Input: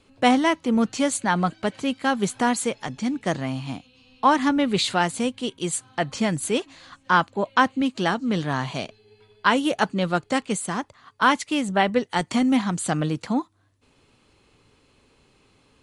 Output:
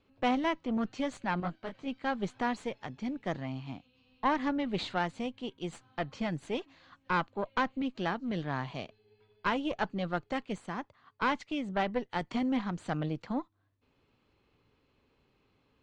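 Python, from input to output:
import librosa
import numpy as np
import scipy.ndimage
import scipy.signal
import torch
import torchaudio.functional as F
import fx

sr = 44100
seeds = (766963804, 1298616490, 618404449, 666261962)

y = fx.tube_stage(x, sr, drive_db=15.0, bias=0.75)
y = fx.air_absorb(y, sr, metres=170.0)
y = fx.detune_double(y, sr, cents=53, at=(1.4, 1.88))
y = y * librosa.db_to_amplitude(-5.5)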